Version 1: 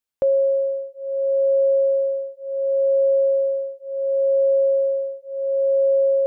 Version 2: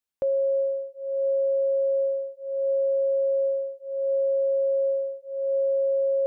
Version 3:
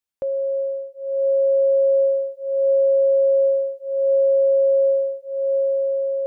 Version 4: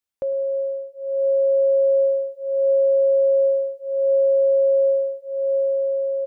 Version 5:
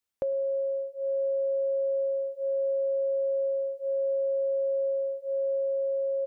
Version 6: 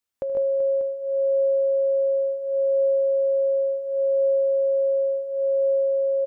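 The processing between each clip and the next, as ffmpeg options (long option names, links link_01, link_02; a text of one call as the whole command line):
ffmpeg -i in.wav -af "alimiter=limit=-17dB:level=0:latency=1,volume=-3dB" out.wav
ffmpeg -i in.wav -af "dynaudnorm=framelen=320:gausssize=7:maxgain=7dB" out.wav
ffmpeg -i in.wav -af "aecho=1:1:104|208|312|416:0.119|0.0606|0.0309|0.0158" out.wav
ffmpeg -i in.wav -af "acompressor=threshold=-27dB:ratio=6" out.wav
ffmpeg -i in.wav -af "aecho=1:1:77|130|150|199|383|591:0.15|0.376|0.668|0.106|0.266|0.282,volume=1dB" out.wav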